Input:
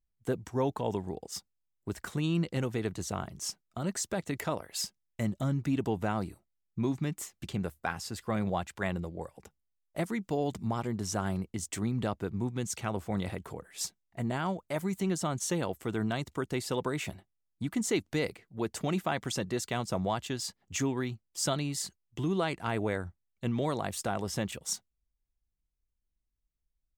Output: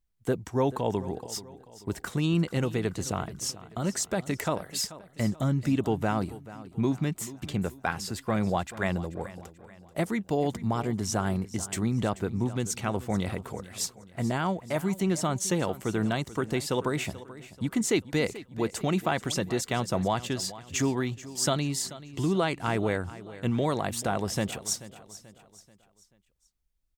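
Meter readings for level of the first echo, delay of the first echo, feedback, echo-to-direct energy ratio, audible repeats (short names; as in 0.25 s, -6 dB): -16.5 dB, 0.435 s, 43%, -15.5 dB, 3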